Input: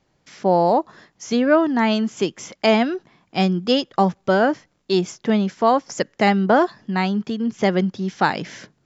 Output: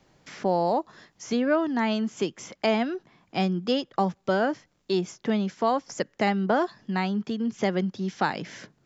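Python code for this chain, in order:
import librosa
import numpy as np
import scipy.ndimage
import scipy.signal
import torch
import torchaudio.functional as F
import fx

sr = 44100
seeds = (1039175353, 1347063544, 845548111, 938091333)

y = fx.band_squash(x, sr, depth_pct=40)
y = y * librosa.db_to_amplitude(-7.0)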